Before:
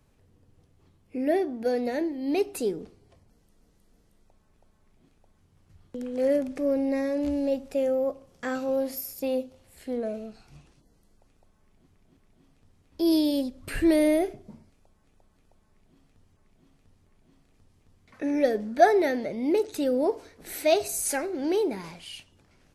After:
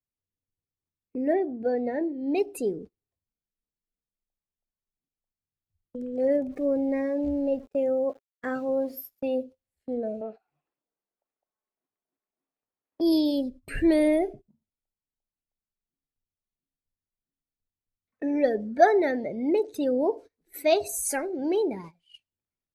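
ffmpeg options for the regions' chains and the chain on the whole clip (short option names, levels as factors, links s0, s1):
-filter_complex "[0:a]asettb=1/sr,asplit=3[s0][s1][s2];[s0]atrim=end=1.334[s3];[s1]atrim=start=1.33:end=2.35,asetpts=PTS-STARTPTS,afade=t=in:d=0.004:c=qsin,afade=t=out:st=1.016:d=0.004:c=qsin,acrossover=split=4700[s4][s5];[s5]acompressor=threshold=0.00141:ratio=4:attack=1:release=60[s6];[s4][s6]amix=inputs=2:normalize=0,highshelf=f=5200:g=-9[s7];[s2]atrim=start=2.346[s8];[s3][s7]acrossfade=d=0.004:c1=hsin:c2=qsin[s9];[s9][s8]acrossfade=d=0.004:c1=qsin:c2=hsin,asettb=1/sr,asplit=3[s10][s11][s12];[s10]atrim=end=6.494[s13];[s11]atrim=start=6.49:end=9.27,asetpts=PTS-STARTPTS,afade=t=in:d=0.004:c=qsin,afade=t=out:st=2.776:d=0.004:c=qsin,aeval=exprs='val(0)*gte(abs(val(0)),0.0075)':c=same,adynamicequalizer=threshold=0.00282:dfrequency=5800:dqfactor=0.7:tfrequency=5800:tqfactor=0.7:attack=5:release=100:ratio=0.375:range=2:mode=cutabove:tftype=highshelf[s14];[s12]atrim=start=9.266[s15];[s13][s14]acrossfade=d=0.004:c1=hsin:c2=qsin[s16];[s16][s15]acrossfade=d=0.004:c1=qsin:c2=hsin,asettb=1/sr,asplit=3[s17][s18][s19];[s17]atrim=end=10.214[s20];[s18]atrim=start=10.21:end=13.01,asetpts=PTS-STARTPTS,afade=t=in:d=0.004:c=qsin,afade=t=out:st=2.796:d=0.004:c=qsin,asplit=2[s21][s22];[s22]highpass=f=720:p=1,volume=12.6,asoftclip=type=tanh:threshold=0.0944[s23];[s21][s23]amix=inputs=2:normalize=0,lowpass=f=1400:p=1,volume=0.501,bass=f=250:g=-11,treble=f=4000:g=-14[s24];[s19]atrim=start=13.006[s25];[s20][s24]acrossfade=d=0.004:c1=hsin:c2=qsin[s26];[s26][s25]acrossfade=d=0.004:c1=qsin:c2=hsin,afftdn=nr=15:nf=-38,agate=range=0.1:threshold=0.00891:ratio=16:detection=peak"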